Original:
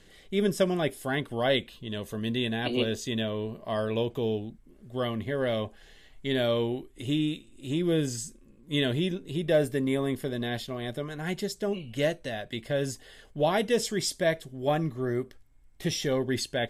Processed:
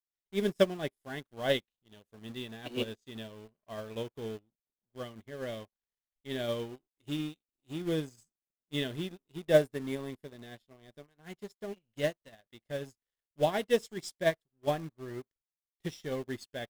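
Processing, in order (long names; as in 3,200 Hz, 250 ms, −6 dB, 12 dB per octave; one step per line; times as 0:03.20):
in parallel at −9 dB: bit reduction 5 bits
on the sum: dead-zone distortion −51 dBFS
expander for the loud parts 2.5 to 1, over −41 dBFS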